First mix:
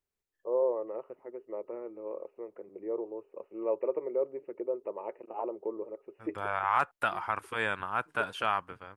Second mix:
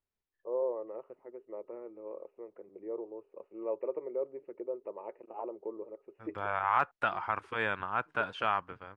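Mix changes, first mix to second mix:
first voice −4.0 dB
master: add high-frequency loss of the air 130 metres

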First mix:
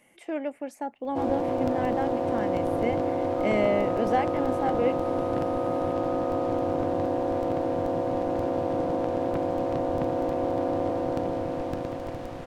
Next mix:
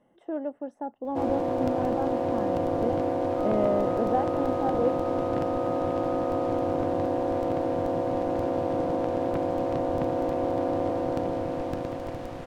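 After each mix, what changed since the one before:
speech: add moving average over 19 samples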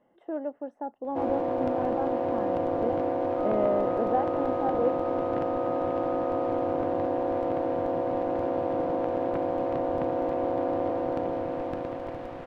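master: add bass and treble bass −6 dB, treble −14 dB

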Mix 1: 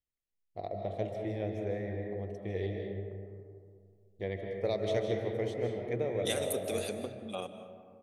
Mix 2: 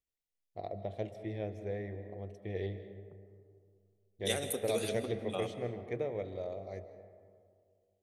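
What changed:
first voice: send −10.5 dB
second voice: entry −2.00 s

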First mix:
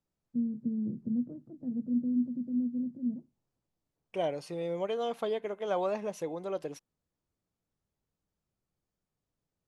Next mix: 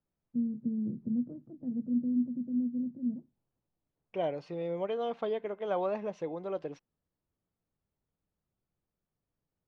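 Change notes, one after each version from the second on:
second voice: add high-frequency loss of the air 60 metres
master: add high-frequency loss of the air 160 metres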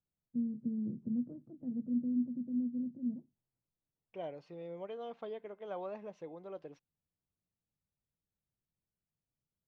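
first voice −3.5 dB
second voice −10.0 dB

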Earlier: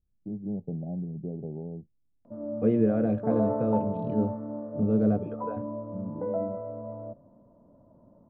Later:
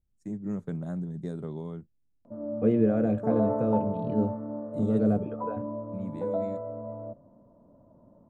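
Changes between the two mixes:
first voice: remove Chebyshev low-pass filter 830 Hz, order 8
master: remove high-frequency loss of the air 150 metres

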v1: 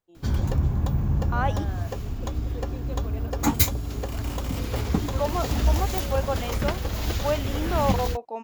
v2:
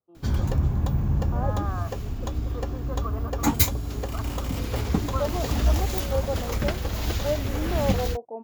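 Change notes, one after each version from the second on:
first voice: add low-pass with resonance 1,200 Hz, resonance Q 10
second voice: add Chebyshev band-pass filter 100–600 Hz, order 2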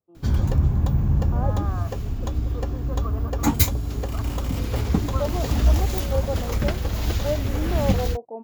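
first voice: add high-frequency loss of the air 340 metres
master: add low-shelf EQ 270 Hz +4 dB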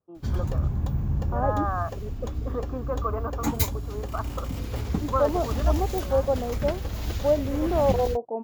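first voice +8.0 dB
second voice +4.5 dB
background −6.0 dB

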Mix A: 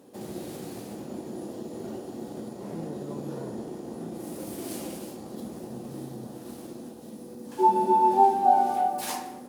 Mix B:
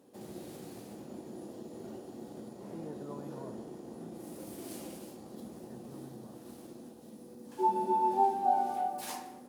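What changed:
speech: add spectral tilt +3 dB per octave
background −8.0 dB

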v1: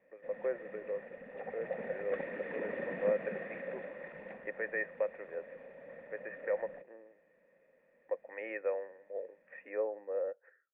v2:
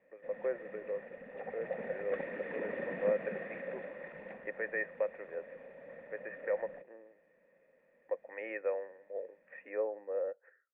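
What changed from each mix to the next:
nothing changed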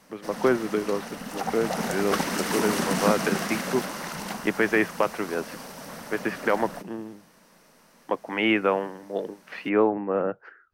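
speech: remove band-pass filter 580–2,000 Hz
master: remove formant resonators in series e

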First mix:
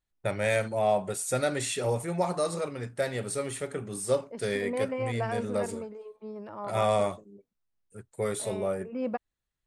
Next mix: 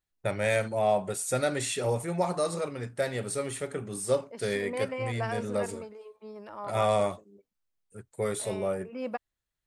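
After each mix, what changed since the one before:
second voice: add spectral tilt +2.5 dB per octave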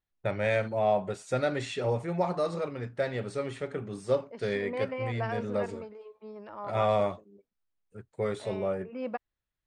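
master: add high-frequency loss of the air 150 metres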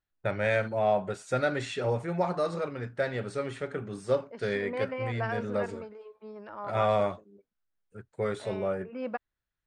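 master: add parametric band 1,500 Hz +5.5 dB 0.4 octaves

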